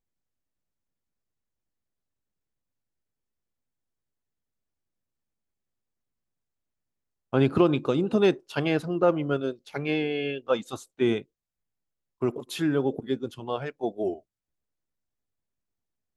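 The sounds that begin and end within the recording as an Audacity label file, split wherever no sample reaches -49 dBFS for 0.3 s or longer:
7.330000	11.230000	sound
12.210000	14.200000	sound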